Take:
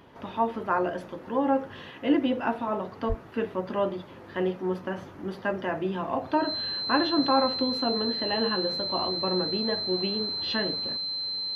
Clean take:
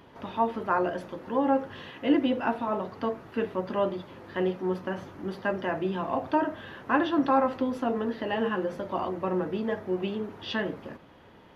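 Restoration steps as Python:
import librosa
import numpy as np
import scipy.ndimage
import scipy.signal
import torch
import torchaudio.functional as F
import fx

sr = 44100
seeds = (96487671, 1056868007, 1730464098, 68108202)

y = fx.notch(x, sr, hz=4100.0, q=30.0)
y = fx.highpass(y, sr, hz=140.0, slope=24, at=(3.08, 3.2), fade=0.02)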